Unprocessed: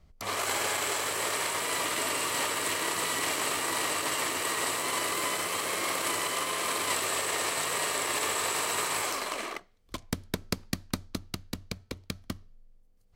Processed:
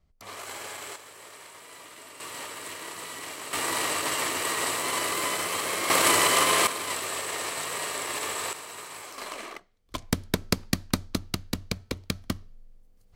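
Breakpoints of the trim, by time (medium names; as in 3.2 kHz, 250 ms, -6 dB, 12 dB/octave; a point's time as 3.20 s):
-9 dB
from 0.96 s -16.5 dB
from 2.20 s -8.5 dB
from 3.53 s +2 dB
from 5.90 s +9.5 dB
from 6.67 s -2 dB
from 8.53 s -11 dB
from 9.18 s -3.5 dB
from 9.95 s +6 dB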